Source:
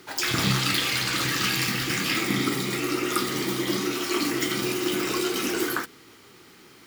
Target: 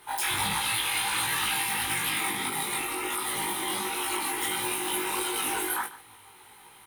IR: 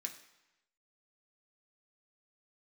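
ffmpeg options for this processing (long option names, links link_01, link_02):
-filter_complex "[0:a]flanger=delay=17:depth=4.9:speed=1.5,superequalizer=9b=3.98:14b=0.316:15b=0.447:16b=3.16,aecho=1:1:146:0.112,alimiter=limit=-18dB:level=0:latency=1:release=119,equalizer=frequency=250:width_type=o:width=2.1:gain=-11,asplit=2[link_01][link_02];[link_02]adelay=19,volume=-2dB[link_03];[link_01][link_03]amix=inputs=2:normalize=0"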